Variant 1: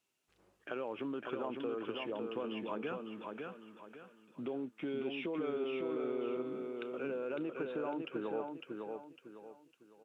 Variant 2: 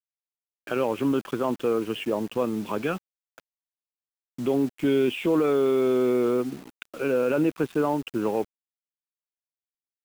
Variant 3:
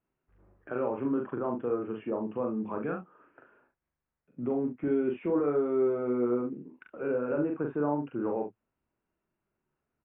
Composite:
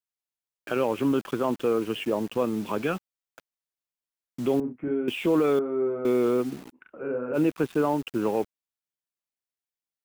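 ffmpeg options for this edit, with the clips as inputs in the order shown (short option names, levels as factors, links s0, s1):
-filter_complex "[2:a]asplit=3[s0][s1][s2];[1:a]asplit=4[s3][s4][s5][s6];[s3]atrim=end=4.602[s7];[s0]atrim=start=4.598:end=5.082[s8];[s4]atrim=start=5.078:end=5.592[s9];[s1]atrim=start=5.588:end=6.052[s10];[s5]atrim=start=6.048:end=6.76[s11];[s2]atrim=start=6.72:end=7.37[s12];[s6]atrim=start=7.33[s13];[s7][s8]acrossfade=d=0.004:c1=hsin:c2=hsin[s14];[s14][s9]acrossfade=d=0.004:c1=hsin:c2=hsin[s15];[s15][s10]acrossfade=d=0.004:c1=hsin:c2=hsin[s16];[s16][s11]acrossfade=d=0.004:c1=hsin:c2=hsin[s17];[s17][s12]acrossfade=d=0.04:c1=tri:c2=tri[s18];[s18][s13]acrossfade=d=0.04:c1=tri:c2=tri"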